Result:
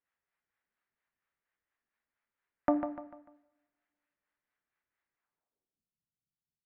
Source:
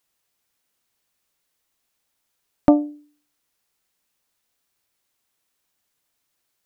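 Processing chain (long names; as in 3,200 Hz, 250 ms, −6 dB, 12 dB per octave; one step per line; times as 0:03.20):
two-band tremolo in antiphase 4.3 Hz, depth 70%, crossover 530 Hz
low-pass filter sweep 1,800 Hz → 170 Hz, 0:05.19–0:05.85
on a send: repeating echo 148 ms, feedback 38%, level −8.5 dB
on the sum: coupled-rooms reverb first 0.86 s, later 2.2 s, from −27 dB, DRR 11 dB
level −9 dB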